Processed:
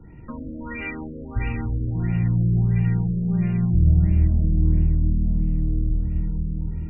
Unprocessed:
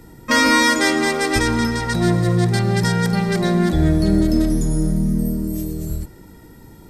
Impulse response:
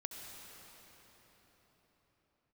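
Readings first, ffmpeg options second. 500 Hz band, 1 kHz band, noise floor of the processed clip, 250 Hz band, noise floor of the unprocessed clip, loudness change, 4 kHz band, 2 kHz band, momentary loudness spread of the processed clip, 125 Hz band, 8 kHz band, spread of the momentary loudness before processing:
−18.0 dB, below −20 dB, −36 dBFS, −7.5 dB, −43 dBFS, −4.5 dB, below −30 dB, −18.0 dB, 13 LU, +0.5 dB, below −40 dB, 11 LU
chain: -filter_complex "[0:a]bass=frequency=250:gain=10,treble=frequency=4000:gain=-4,acrossover=split=140|3600[link_01][link_02][link_03];[link_02]acompressor=threshold=-27dB:ratio=5[link_04];[link_01][link_04][link_03]amix=inputs=3:normalize=0,aexciter=amount=3.5:drive=8.4:freq=2300[link_05];[1:a]atrim=start_sample=2205[link_06];[link_05][link_06]afir=irnorm=-1:irlink=0,afftfilt=real='re*lt(b*sr/1024,600*pow(2900/600,0.5+0.5*sin(2*PI*1.5*pts/sr)))':imag='im*lt(b*sr/1024,600*pow(2900/600,0.5+0.5*sin(2*PI*1.5*pts/sr)))':win_size=1024:overlap=0.75,volume=-4.5dB"

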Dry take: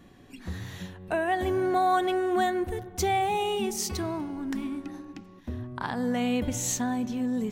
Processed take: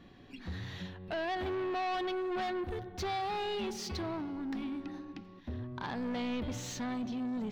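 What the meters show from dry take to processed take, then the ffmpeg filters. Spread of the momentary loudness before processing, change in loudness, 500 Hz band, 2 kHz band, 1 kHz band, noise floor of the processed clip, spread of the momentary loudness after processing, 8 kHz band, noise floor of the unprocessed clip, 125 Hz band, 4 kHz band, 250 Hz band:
15 LU, −8.5 dB, −8.0 dB, −7.5 dB, −9.5 dB, −54 dBFS, 10 LU, −15.0 dB, −51 dBFS, −6.0 dB, −5.0 dB, −7.0 dB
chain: -af "asoftclip=type=tanh:threshold=-30dB,highshelf=frequency=6100:width_type=q:width=1.5:gain=-12,volume=-2.5dB"

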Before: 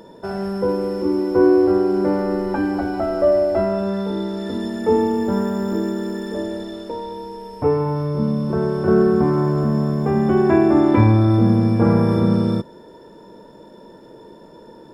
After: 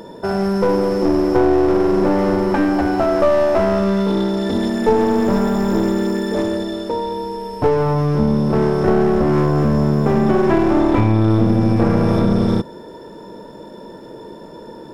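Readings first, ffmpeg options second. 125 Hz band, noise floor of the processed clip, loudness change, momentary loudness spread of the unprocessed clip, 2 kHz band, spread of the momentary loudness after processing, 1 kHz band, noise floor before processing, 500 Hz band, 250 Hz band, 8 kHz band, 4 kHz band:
+1.5 dB, −37 dBFS, +2.0 dB, 12 LU, +4.5 dB, 13 LU, +4.5 dB, −44 dBFS, +2.0 dB, +2.0 dB, can't be measured, +5.5 dB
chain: -af "acompressor=threshold=-16dB:ratio=5,aeval=exprs='clip(val(0),-1,0.0668)':channel_layout=same,volume=7dB"

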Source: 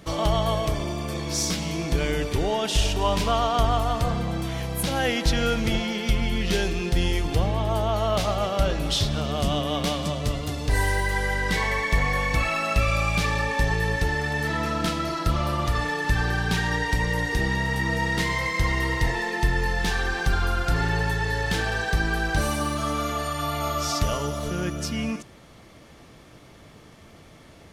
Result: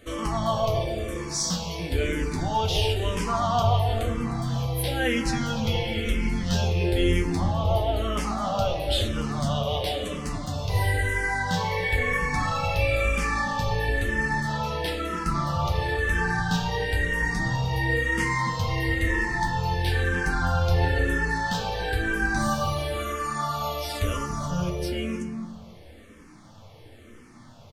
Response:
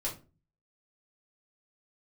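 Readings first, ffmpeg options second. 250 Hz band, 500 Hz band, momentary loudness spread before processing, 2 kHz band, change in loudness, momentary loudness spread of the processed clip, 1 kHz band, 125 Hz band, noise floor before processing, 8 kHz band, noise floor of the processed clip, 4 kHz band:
−1.0 dB, −1.0 dB, 5 LU, −0.5 dB, −1.0 dB, 6 LU, −0.5 dB, 0.0 dB, −49 dBFS, −3.0 dB, −48 dBFS, −2.5 dB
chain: -filter_complex "[0:a]flanger=delay=8.5:depth=3:regen=41:speed=0.22:shape=sinusoidal,asplit=2[link_01][link_02];[link_02]adelay=289,lowpass=frequency=830:poles=1,volume=-4dB,asplit=2[link_03][link_04];[link_04]adelay=289,lowpass=frequency=830:poles=1,volume=0.35,asplit=2[link_05][link_06];[link_06]adelay=289,lowpass=frequency=830:poles=1,volume=0.35,asplit=2[link_07][link_08];[link_08]adelay=289,lowpass=frequency=830:poles=1,volume=0.35[link_09];[link_01][link_03][link_05][link_07][link_09]amix=inputs=5:normalize=0,asplit=2[link_10][link_11];[1:a]atrim=start_sample=2205,asetrate=38367,aresample=44100[link_12];[link_11][link_12]afir=irnorm=-1:irlink=0,volume=-4.5dB[link_13];[link_10][link_13]amix=inputs=2:normalize=0,asplit=2[link_14][link_15];[link_15]afreqshift=-1[link_16];[link_14][link_16]amix=inputs=2:normalize=1"

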